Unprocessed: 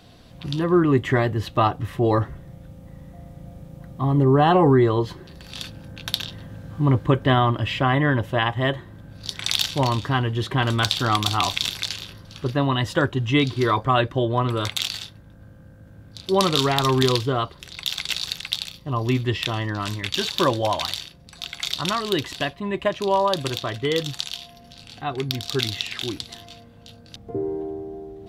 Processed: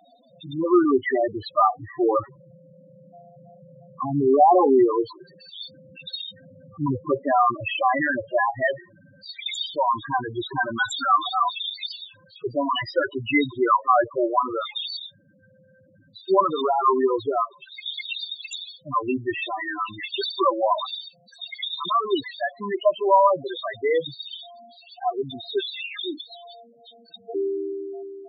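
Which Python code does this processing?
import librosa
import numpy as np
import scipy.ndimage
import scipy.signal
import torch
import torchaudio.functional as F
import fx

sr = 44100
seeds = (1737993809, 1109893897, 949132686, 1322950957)

y = fx.self_delay(x, sr, depth_ms=0.1)
y = fx.weighting(y, sr, curve='A')
y = fx.spec_topn(y, sr, count=4)
y = y * 10.0 ** (7.0 / 20.0)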